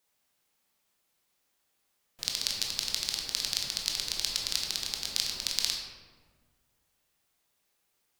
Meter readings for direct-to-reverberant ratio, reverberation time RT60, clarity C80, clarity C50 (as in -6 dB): -0.5 dB, 1.6 s, 4.5 dB, 2.5 dB